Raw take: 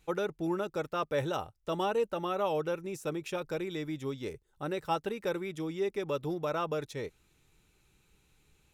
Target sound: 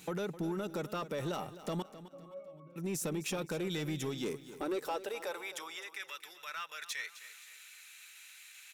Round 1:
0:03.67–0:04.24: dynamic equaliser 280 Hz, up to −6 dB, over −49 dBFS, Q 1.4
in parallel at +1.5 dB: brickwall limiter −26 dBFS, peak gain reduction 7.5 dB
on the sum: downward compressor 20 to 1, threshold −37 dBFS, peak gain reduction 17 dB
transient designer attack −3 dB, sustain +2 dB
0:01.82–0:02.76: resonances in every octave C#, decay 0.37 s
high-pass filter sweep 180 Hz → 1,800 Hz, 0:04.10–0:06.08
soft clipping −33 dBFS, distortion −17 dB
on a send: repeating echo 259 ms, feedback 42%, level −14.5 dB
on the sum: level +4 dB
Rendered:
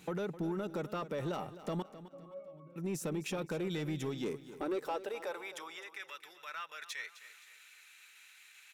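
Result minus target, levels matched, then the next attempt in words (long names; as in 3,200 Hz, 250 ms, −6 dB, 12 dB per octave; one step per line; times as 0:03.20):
8,000 Hz band −5.0 dB
0:03.67–0:04.24: dynamic equaliser 280 Hz, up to −6 dB, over −49 dBFS, Q 1.4
in parallel at +1.5 dB: brickwall limiter −26 dBFS, peak gain reduction 7.5 dB
on the sum: downward compressor 20 to 1, threshold −37 dBFS, peak gain reduction 17 dB
high-shelf EQ 3,400 Hz +9 dB
transient designer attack −3 dB, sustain +2 dB
0:01.82–0:02.76: resonances in every octave C#, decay 0.37 s
high-pass filter sweep 180 Hz → 1,800 Hz, 0:04.10–0:06.08
soft clipping −33 dBFS, distortion −16 dB
on a send: repeating echo 259 ms, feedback 42%, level −14.5 dB
on the sum: level +4 dB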